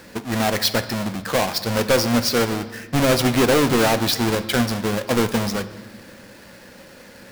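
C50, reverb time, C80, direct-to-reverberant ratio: 13.5 dB, 1.4 s, 15.0 dB, 10.0 dB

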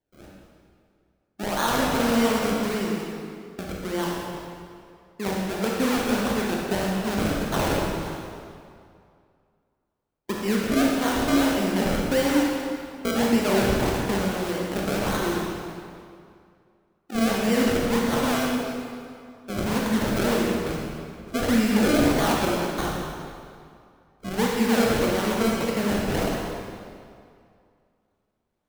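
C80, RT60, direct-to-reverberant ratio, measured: 1.0 dB, 2.3 s, -3.0 dB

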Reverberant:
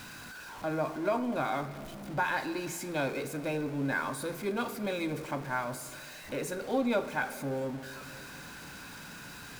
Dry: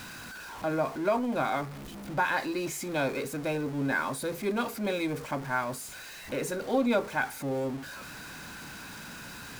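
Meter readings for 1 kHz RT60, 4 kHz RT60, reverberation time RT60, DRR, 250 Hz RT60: 2.1 s, 1.7 s, 2.6 s, 10.5 dB, 3.0 s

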